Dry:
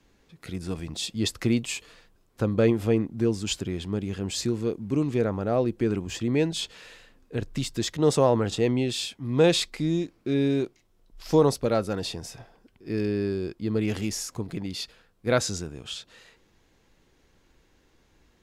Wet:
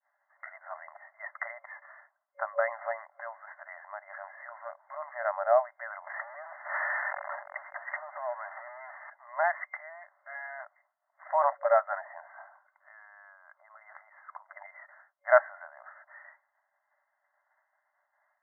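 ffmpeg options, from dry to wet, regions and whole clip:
-filter_complex "[0:a]asettb=1/sr,asplit=3[a][b][c];[a]atrim=end=6.074[d];[b]atrim=start=6.07:end=9.1,asetpts=PTS-STARTPTS,afade=t=in:d=0.004:c=qsin,afade=t=out:st=3.026:d=0.004:c=qsin,aeval=exprs='val(0)+0.5*0.0501*sgn(val(0))':c=same,acompressor=threshold=-30dB:ratio=16:attack=3.2:release=140:knee=1:detection=peak[e];[c]atrim=start=9.096[f];[d][e]acrossfade=d=0.004:c1=hsin:c2=qsin[g];[g][f]acrossfade=d=0.004:c1=qsin:c2=hsin,asettb=1/sr,asplit=3[h][i][j];[h]atrim=end=12.244[k];[i]atrim=start=12.24:end=14.56,asetpts=PTS-STARTPTS,afade=t=in:d=0.004:c=qsin,afade=t=out:st=2.316:d=0.004:c=qsin,asubboost=boost=10.5:cutoff=120,aecho=1:1:0.8:0.39,atrim=end_sample=102312,acompressor=threshold=-33dB:ratio=3:attack=3.2:release=140:knee=1:detection=peak[l];[j]atrim=start=14.556[m];[k][l]acrossfade=d=0.004:c1=hsin:c2=qsin[n];[n][m]acrossfade=d=0.004:c1=qsin:c2=hsin,agate=range=-33dB:threshold=-54dB:ratio=3:detection=peak,afftfilt=real='re*between(b*sr/4096,570,2100)':imag='im*between(b*sr/4096,570,2100)':win_size=4096:overlap=0.75,volume=5.5dB"

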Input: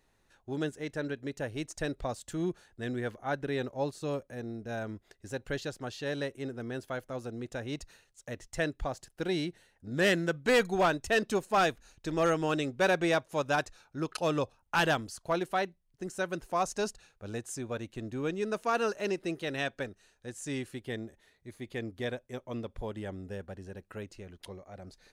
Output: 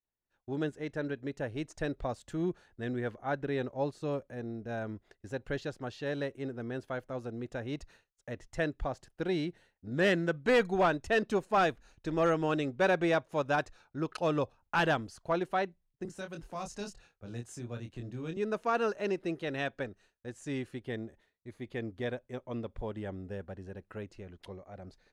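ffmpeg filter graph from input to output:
-filter_complex "[0:a]asettb=1/sr,asplit=3[a][b][c];[a]atrim=end=16.054[d];[b]atrim=start=16.05:end=18.37,asetpts=PTS-STARTPTS,afade=t=in:d=0.004:c=qsin,afade=t=out:st=2.316:d=0.004:c=qsin,acrossover=split=190|3000[e][f][g];[f]acompressor=threshold=-58dB:ratio=1.5:attack=3.2:release=140:knee=2.83:detection=peak[h];[e][h][g]amix=inputs=3:normalize=0,asplit=2[i][j];[j]adelay=25,volume=-5dB[k];[i][k]amix=inputs=2:normalize=0,atrim=end_sample=102312[l];[c]atrim=start=18.366[m];[d][l]acrossfade=d=0.004:c1=hsin:c2=qsin[n];[n][m]acrossfade=d=0.004:c1=qsin:c2=hsin,lowpass=f=2.5k:p=1,agate=range=-33dB:threshold=-56dB:ratio=3:detection=peak"

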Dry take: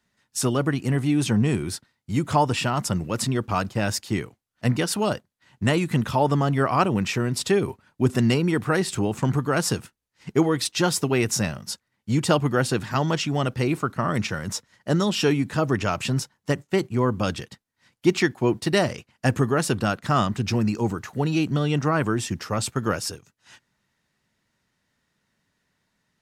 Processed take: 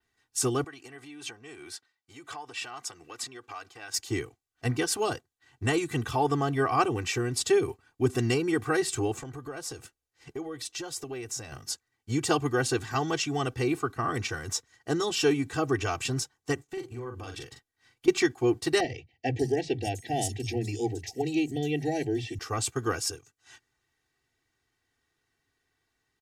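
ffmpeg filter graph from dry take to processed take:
-filter_complex "[0:a]asettb=1/sr,asplit=3[a][b][c];[a]atrim=end=0.644[d];[b]atrim=start=0.64:end=3.94,asetpts=PTS-STARTPTS,afade=t=in:d=0.004:c=qsin,afade=t=out:st=3.296:d=0.004:c=qsin,highshelf=f=6.6k:g=-10.5,acompressor=threshold=-25dB:ratio=10:attack=3.2:release=140:knee=1:detection=peak,highpass=f=1.2k:p=1[e];[c]atrim=start=3.936[f];[d][e]acrossfade=d=0.004:c1=hsin:c2=qsin[g];[g][f]acrossfade=d=0.004:c1=qsin:c2=hsin,asettb=1/sr,asplit=3[h][i][j];[h]atrim=end=9.124[k];[i]atrim=start=9.12:end=11.52,asetpts=PTS-STARTPTS,afade=t=in:d=0.004:c=qsin,afade=t=out:st=2.396:d=0.004:c=qsin,equalizer=f=570:w=5.2:g=9.5,acompressor=threshold=-32dB:ratio=4:attack=3.2:release=140:knee=1:detection=peak[l];[j]atrim=start=11.516[m];[k][l]acrossfade=d=0.004:c1=hsin:c2=qsin[n];[n][m]acrossfade=d=0.004:c1=qsin:c2=hsin,asettb=1/sr,asplit=3[o][p][q];[o]atrim=end=16.644[r];[p]atrim=start=16.64:end=18.08,asetpts=PTS-STARTPTS,afade=t=in:d=0.004:c=qsin,afade=t=out:st=1.436:d=0.004:c=qsin,acompressor=threshold=-31dB:ratio=5:attack=3.2:release=140:knee=1:detection=peak,asplit=2[s][t];[t]adelay=42,volume=-5dB[u];[s][u]amix=inputs=2:normalize=0,atrim=end_sample=63504[v];[q]atrim=start=18.076[w];[r][v]acrossfade=d=0.004:c1=hsin:c2=qsin[x];[x][w]acrossfade=d=0.004:c1=qsin:c2=hsin,asettb=1/sr,asplit=3[y][z][aa];[y]atrim=end=18.804[ab];[z]atrim=start=18.8:end=22.39,asetpts=PTS-STARTPTS,afade=t=in:d=0.004:c=qsin,afade=t=out:st=3.586:d=0.004:c=qsin,asuperstop=centerf=1200:order=12:qfactor=1.3,acrossover=split=160|4600[ac][ad][ae];[ac]adelay=40[af];[ae]adelay=590[ag];[af][ad][ag]amix=inputs=3:normalize=0,atrim=end_sample=158319[ah];[aa]atrim=start=22.386[ai];[ab][ah]acrossfade=d=0.004:c1=hsin:c2=qsin[aj];[aj][ai]acrossfade=d=0.004:c1=qsin:c2=hsin,aecho=1:1:2.6:0.98,adynamicequalizer=threshold=0.00891:dfrequency=6900:dqfactor=1.8:tfrequency=6900:tqfactor=1.8:attack=5:release=100:ratio=0.375:range=3:mode=boostabove:tftype=bell,volume=-7dB"

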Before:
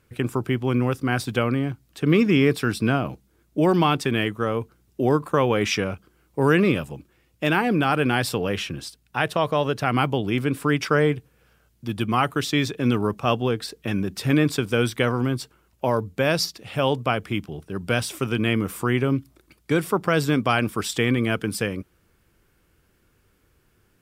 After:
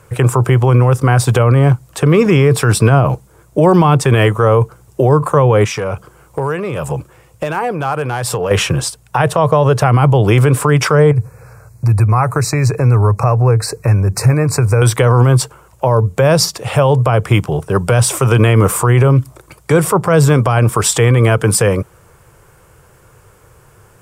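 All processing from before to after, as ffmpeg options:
-filter_complex "[0:a]asettb=1/sr,asplit=3[a][b][c];[a]atrim=end=5.644[d];[b]atrim=start=5.64:end=8.51,asetpts=PTS-STARTPTS,afade=t=in:d=0.004:c=qsin,afade=t=out:st=2.866:d=0.004:c=qsin,acompressor=threshold=-32dB:ratio=8:attack=3.2:release=140:knee=1:detection=peak,asoftclip=type=hard:threshold=-26.5dB[e];[c]atrim=start=8.506[f];[d][e]acrossfade=d=0.004:c1=hsin:c2=qsin[g];[g][f]acrossfade=d=0.004:c1=qsin:c2=hsin,asettb=1/sr,asplit=3[h][i][j];[h]atrim=end=11.114[k];[i]atrim=start=11.11:end=14.82,asetpts=PTS-STARTPTS,afade=t=in:d=0.004:c=qsin,afade=t=out:st=3.706:d=0.004:c=qsin,equalizer=f=100:w=1.9:g=13,acompressor=threshold=-32dB:ratio=2.5:attack=3.2:release=140:knee=1:detection=peak,asuperstop=centerf=3200:order=12:qfactor=2.4[l];[j]atrim=start=14.816[m];[k][l]acrossfade=d=0.004:c1=hsin:c2=qsin[n];[n][m]acrossfade=d=0.004:c1=qsin:c2=hsin,equalizer=f=125:t=o:w=1:g=11,equalizer=f=250:t=o:w=1:g=-10,equalizer=f=500:t=o:w=1:g=9,equalizer=f=1k:t=o:w=1:g=10,equalizer=f=4k:t=o:w=1:g=-4,equalizer=f=8k:t=o:w=1:g=9,acrossover=split=340[o][p];[p]acompressor=threshold=-20dB:ratio=4[q];[o][q]amix=inputs=2:normalize=0,alimiter=level_in=13.5dB:limit=-1dB:release=50:level=0:latency=1,volume=-1dB"

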